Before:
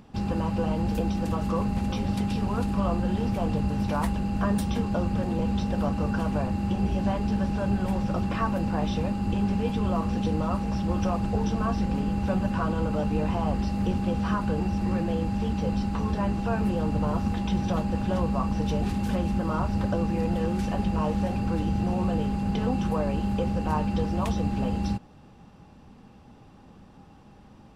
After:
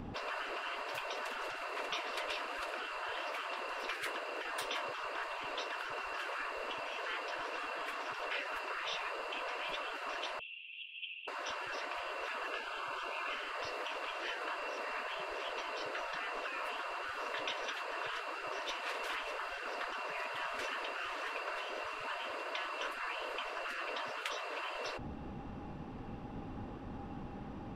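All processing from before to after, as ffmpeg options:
ffmpeg -i in.wav -filter_complex "[0:a]asettb=1/sr,asplit=3[link_01][link_02][link_03];[link_01]atrim=end=10.394[link_04];[link_02]atrim=start=10.39:end=11.28,asetpts=PTS-STARTPTS,afade=type=in:duration=0.004:curve=qsin,afade=type=out:start_time=0.886:duration=0.004:curve=qsin,asuperpass=centerf=2900:order=8:qfactor=3.4,aecho=1:1:7.2:0.99,atrim=end_sample=39249[link_05];[link_03]atrim=start=11.276[link_06];[link_04][link_05]acrossfade=duration=0.004:curve1=hsin:curve2=qsin[link_07];[link_07][link_06]acrossfade=duration=0.004:curve1=qsin:curve2=hsin,asettb=1/sr,asplit=3[link_08][link_09][link_10];[link_08]atrim=end=12.484[link_11];[link_09]atrim=start=12.48:end=13.33,asetpts=PTS-STARTPTS,afade=type=in:duration=0.004:curve=qsin,afade=type=out:start_time=0.846:duration=0.004:curve=qsin,aeval=exprs='val(0)+0.01*sin(2*PI*780*n/s)':channel_layout=same,asuperstop=centerf=1900:order=8:qfactor=6.3[link_12];[link_10]atrim=start=13.326[link_13];[link_11][link_12]acrossfade=duration=0.004:curve1=hsin:curve2=qsin[link_14];[link_14][link_13]acrossfade=duration=0.004:curve1=qsin:curve2=hsin,bass=frequency=250:gain=8,treble=frequency=4000:gain=-14,afftfilt=real='re*lt(hypot(re,im),0.0355)':imag='im*lt(hypot(re,im),0.0355)':win_size=1024:overlap=0.75,volume=6.5dB" out.wav

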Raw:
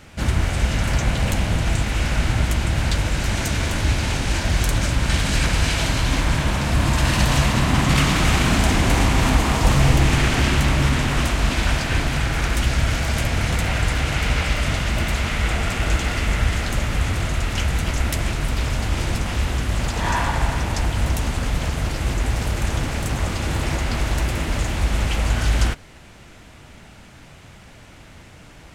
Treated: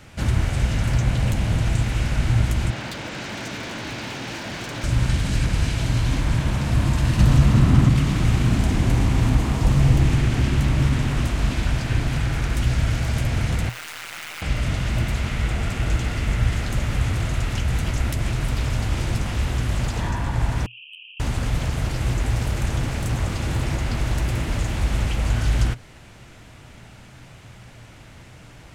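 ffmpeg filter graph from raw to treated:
ffmpeg -i in.wav -filter_complex "[0:a]asettb=1/sr,asplit=3[link_01][link_02][link_03];[link_01]atrim=end=2.704[link_04];[link_02]atrim=start=2.7:end=4.84,asetpts=PTS-STARTPTS,afade=type=in:duration=0.004:curve=qsin,afade=type=out:start_time=2.136:duration=0.004:curve=qsin,highpass=frequency=120:poles=1,acrossover=split=170 6800:gain=0.126 1 0.0631[link_05][link_06][link_07];[link_05][link_06][link_07]amix=inputs=3:normalize=0,aeval=exprs='0.0841*(abs(mod(val(0)/0.0841+3,4)-2)-1)':channel_layout=same[link_08];[link_03]atrim=start=4.836[link_09];[link_04][link_08]acrossfade=duration=0.004:curve1=hsin:curve2=qsin[link_10];[link_10][link_09]acrossfade=duration=0.004:curve1=qsin:curve2=hsin,asettb=1/sr,asplit=3[link_11][link_12][link_13];[link_11]atrim=end=7.194[link_14];[link_12]atrim=start=7.19:end=7.89,asetpts=PTS-STARTPTS,afade=type=in:duration=0.004:curve=qsin,afade=type=out:start_time=0.696:duration=0.004:curve=qsin,equalizer=frequency=1300:width_type=o:width=0.27:gain=5,acontrast=32[link_15];[link_13]atrim=start=7.886[link_16];[link_14][link_15]acrossfade=duration=0.004:curve1=hsin:curve2=qsin[link_17];[link_17][link_16]acrossfade=duration=0.004:curve1=qsin:curve2=hsin,asettb=1/sr,asplit=3[link_18][link_19][link_20];[link_18]atrim=end=13.694[link_21];[link_19]atrim=start=13.69:end=14.42,asetpts=PTS-STARTPTS,afade=type=in:duration=0.004:curve=qsin,afade=type=out:start_time=0.726:duration=0.004:curve=qsin,highpass=1000,tremolo=f=160:d=0.889,acrusher=bits=6:dc=4:mix=0:aa=0.000001[link_22];[link_20]atrim=start=14.416[link_23];[link_21][link_22]acrossfade=duration=0.004:curve1=hsin:curve2=qsin[link_24];[link_24][link_23]acrossfade=duration=0.004:curve1=qsin:curve2=hsin,asettb=1/sr,asplit=3[link_25][link_26][link_27];[link_25]atrim=end=20.664[link_28];[link_26]atrim=start=20.66:end=21.2,asetpts=PTS-STARTPTS,afade=type=in:duration=0.004:curve=qsin,afade=type=out:start_time=0.536:duration=0.004:curve=qsin,asuperpass=centerf=2800:order=12:qfactor=4.1,asoftclip=type=hard:threshold=-30dB[link_29];[link_27]atrim=start=21.196[link_30];[link_28][link_29]acrossfade=duration=0.004:curve1=hsin:curve2=qsin[link_31];[link_31][link_30]acrossfade=duration=0.004:curve1=qsin:curve2=hsin,equalizer=frequency=120:width_type=o:width=0.21:gain=9.5,acrossover=split=390[link_32][link_33];[link_33]acompressor=threshold=-29dB:ratio=6[link_34];[link_32][link_34]amix=inputs=2:normalize=0,volume=-1.5dB" out.wav

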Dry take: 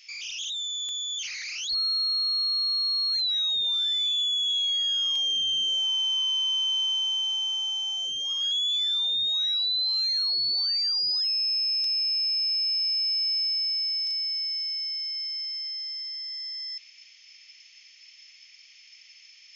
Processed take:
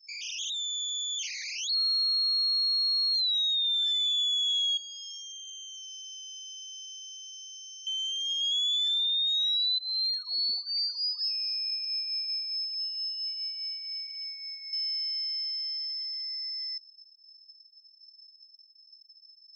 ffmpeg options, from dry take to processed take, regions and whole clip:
ffmpeg -i in.wav -filter_complex "[0:a]asettb=1/sr,asplit=3[link_01][link_02][link_03];[link_01]atrim=end=4.774[link_04];[link_02]atrim=start=4.77:end=7.87,asetpts=PTS-STARTPTS,afade=type=in:duration=0.004:curve=qsin,afade=type=out:start_time=3.096:duration=0.004:curve=qsin,bandpass=frequency=5300:width_type=q:width=11,aemphasis=mode=production:type=riaa[link_05];[link_03]atrim=start=7.866[link_06];[link_04][link_05]acrossfade=duration=0.004:curve1=hsin:curve2=qsin[link_07];[link_07][link_06]acrossfade=duration=0.004:curve1=qsin:curve2=hsin,asettb=1/sr,asplit=3[link_08][link_09][link_10];[link_08]atrim=end=9.784[link_11];[link_09]atrim=start=9.78:end=14.73,asetpts=PTS-STARTPTS,afade=type=in:duration=0.004:curve=qsin,afade=type=out:start_time=4.946:duration=0.004:curve=qsin,aemphasis=mode=reproduction:type=75kf,aecho=1:1:4.1:0.86,atrim=end_sample=218295,aecho=1:1:437:0.237,atrim=end_sample=218295[link_12];[link_10]atrim=start=14.726[link_13];[link_11][link_12]acrossfade=duration=0.004:curve1=hsin:curve2=qsin[link_14];[link_14][link_13]acrossfade=duration=0.004:curve1=qsin:curve2=hsin,highshelf=frequency=3400:gain=7,afftfilt=real='re*gte(hypot(re,im),0.0178)':imag='im*gte(hypot(re,im),0.0178)':win_size=1024:overlap=0.75,volume=-5dB" out.wav

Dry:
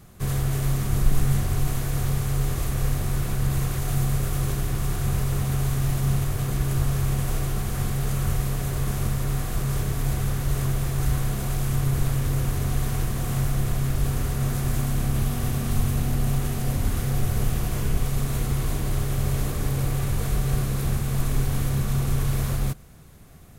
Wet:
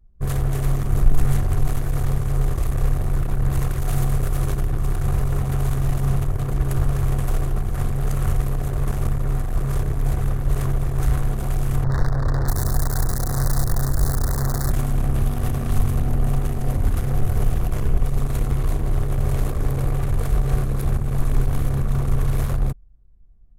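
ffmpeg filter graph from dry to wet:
ffmpeg -i in.wav -filter_complex "[0:a]asettb=1/sr,asplit=3[link_01][link_02][link_03];[link_01]atrim=end=11.844[link_04];[link_02]atrim=start=11.84:end=14.71,asetpts=PTS-STARTPTS,afade=type=in:duration=0.004:curve=qsin,afade=type=out:start_time=2.866:duration=0.004:curve=qsin,acrossover=split=290|3600[link_05][link_06][link_07];[link_06]adelay=30[link_08];[link_07]adelay=640[link_09];[link_05][link_08][link_09]amix=inputs=3:normalize=0,atrim=end_sample=126567,acrusher=bits=6:dc=4:mix=0:aa=0.000001,asuperstop=centerf=2700:order=8:qfactor=1.4[link_10];[link_03]atrim=start=14.706[link_11];[link_04][link_10]acrossfade=duration=0.004:curve1=hsin:curve2=qsin[link_12];[link_12][link_11]acrossfade=duration=0.004:curve1=qsin:curve2=hsin,acontrast=38,equalizer=frequency=180:width_type=o:width=1.7:gain=-6.5,anlmdn=251,volume=1dB" out.wav

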